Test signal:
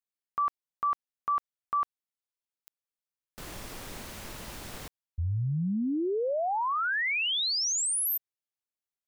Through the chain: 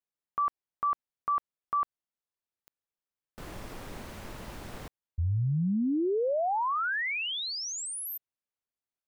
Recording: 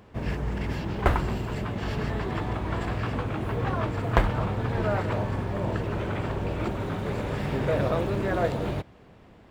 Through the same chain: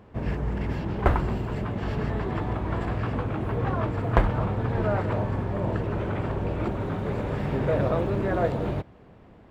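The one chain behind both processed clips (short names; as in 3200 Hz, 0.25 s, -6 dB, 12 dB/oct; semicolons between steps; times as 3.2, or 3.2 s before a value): high shelf 2500 Hz -10 dB; gain +1.5 dB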